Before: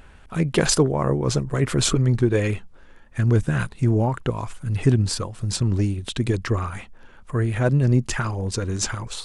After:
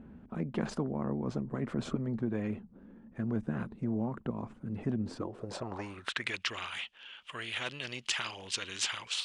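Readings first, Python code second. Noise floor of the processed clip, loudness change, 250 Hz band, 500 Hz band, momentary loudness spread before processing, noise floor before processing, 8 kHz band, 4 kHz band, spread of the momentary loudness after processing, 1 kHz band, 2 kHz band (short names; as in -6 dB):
-58 dBFS, -13.5 dB, -10.5 dB, -15.0 dB, 8 LU, -48 dBFS, -14.5 dB, -6.5 dB, 8 LU, -12.0 dB, -7.0 dB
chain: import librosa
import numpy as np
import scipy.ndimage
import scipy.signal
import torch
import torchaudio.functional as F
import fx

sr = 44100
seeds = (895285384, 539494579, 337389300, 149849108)

y = fx.filter_sweep_bandpass(x, sr, from_hz=220.0, to_hz=3000.0, start_s=5.03, end_s=6.47, q=6.3)
y = fx.spectral_comp(y, sr, ratio=2.0)
y = y * 10.0 ** (1.5 / 20.0)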